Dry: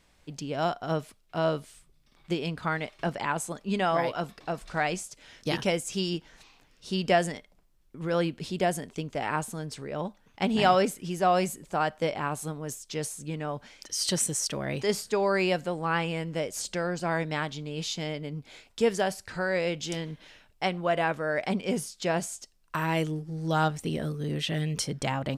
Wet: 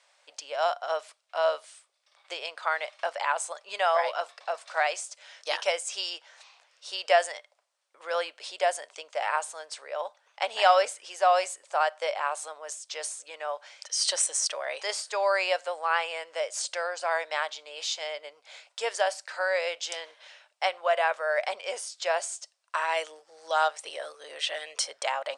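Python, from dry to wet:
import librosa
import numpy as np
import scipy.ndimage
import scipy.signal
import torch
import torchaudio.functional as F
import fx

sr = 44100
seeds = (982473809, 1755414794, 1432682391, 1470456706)

y = scipy.signal.sosfilt(scipy.signal.cheby1(4, 1.0, [560.0, 9200.0], 'bandpass', fs=sr, output='sos'), x)
y = y * librosa.db_to_amplitude(3.0)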